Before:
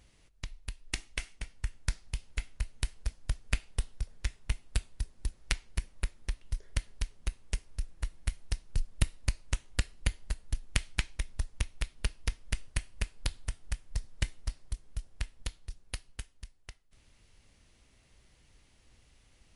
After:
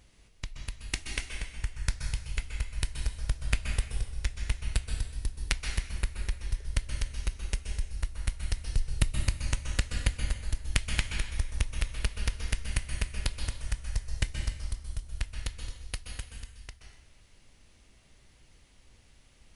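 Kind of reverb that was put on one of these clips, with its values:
dense smooth reverb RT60 0.96 s, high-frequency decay 0.95×, pre-delay 115 ms, DRR 4 dB
level +2 dB

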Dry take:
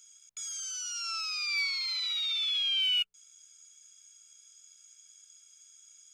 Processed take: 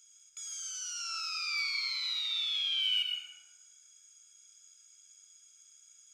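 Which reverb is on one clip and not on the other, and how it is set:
dense smooth reverb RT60 1.6 s, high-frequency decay 0.4×, pre-delay 80 ms, DRR 0 dB
level −4 dB

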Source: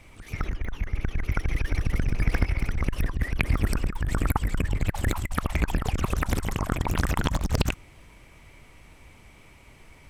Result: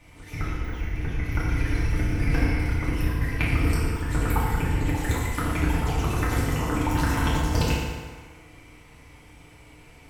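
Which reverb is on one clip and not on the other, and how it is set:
feedback delay network reverb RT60 1.6 s, low-frequency decay 0.8×, high-frequency decay 0.75×, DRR −8 dB
level −6 dB

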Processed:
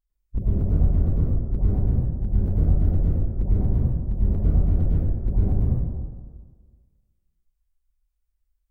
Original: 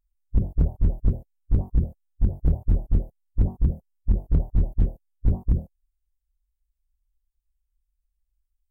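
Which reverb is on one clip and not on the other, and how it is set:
dense smooth reverb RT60 1.6 s, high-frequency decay 0.4×, pre-delay 90 ms, DRR −8 dB
level −6 dB

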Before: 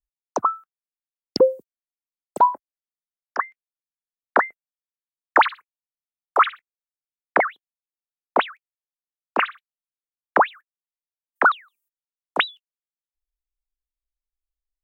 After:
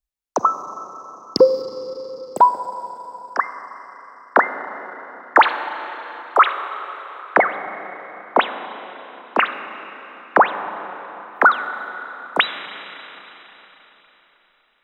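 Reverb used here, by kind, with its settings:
four-comb reverb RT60 4 s, combs from 31 ms, DRR 9 dB
level +3.5 dB

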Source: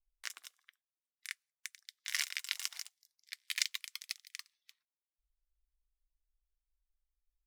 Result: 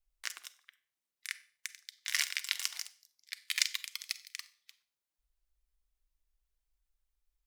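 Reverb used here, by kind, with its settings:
four-comb reverb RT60 0.42 s, combs from 31 ms, DRR 15 dB
level +3.5 dB

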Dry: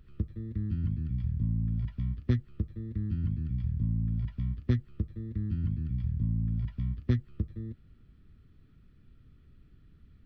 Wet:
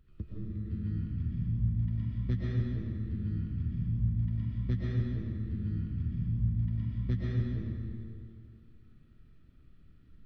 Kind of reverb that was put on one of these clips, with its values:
comb and all-pass reverb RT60 2.3 s, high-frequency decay 0.85×, pre-delay 80 ms, DRR −6.5 dB
level −8 dB

